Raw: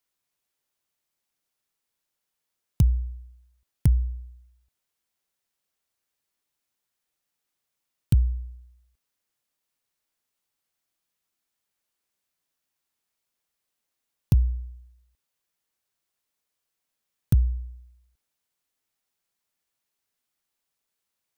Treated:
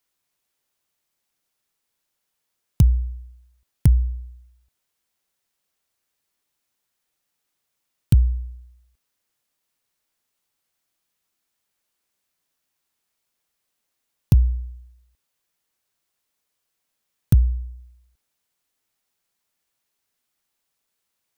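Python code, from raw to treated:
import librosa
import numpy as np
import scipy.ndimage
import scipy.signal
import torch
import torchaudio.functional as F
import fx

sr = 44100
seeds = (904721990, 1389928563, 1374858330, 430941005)

y = fx.fixed_phaser(x, sr, hz=750.0, stages=4, at=(17.38, 17.78), fade=0.02)
y = F.gain(torch.from_numpy(y), 4.5).numpy()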